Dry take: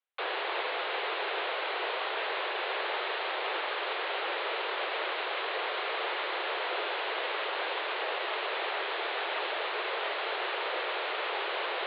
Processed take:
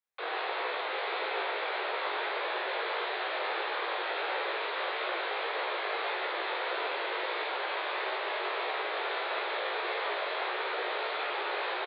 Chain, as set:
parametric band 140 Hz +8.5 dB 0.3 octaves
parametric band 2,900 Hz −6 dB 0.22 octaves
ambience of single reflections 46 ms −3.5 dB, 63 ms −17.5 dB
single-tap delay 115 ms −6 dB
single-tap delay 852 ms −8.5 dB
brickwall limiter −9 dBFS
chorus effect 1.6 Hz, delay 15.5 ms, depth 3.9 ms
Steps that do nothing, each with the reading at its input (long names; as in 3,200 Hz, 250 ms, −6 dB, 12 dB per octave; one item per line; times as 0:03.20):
parametric band 140 Hz: nothing at its input below 290 Hz
brickwall limiter −9 dBFS: peak of its input −16.5 dBFS